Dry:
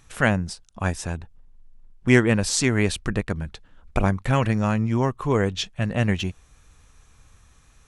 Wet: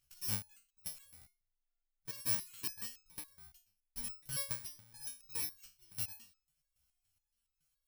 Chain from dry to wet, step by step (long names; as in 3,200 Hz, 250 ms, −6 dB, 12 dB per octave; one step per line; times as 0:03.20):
samples in bit-reversed order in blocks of 64 samples
output level in coarse steps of 21 dB
guitar amp tone stack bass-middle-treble 5-5-5
step-sequenced resonator 7.1 Hz 64–1,300 Hz
level +5 dB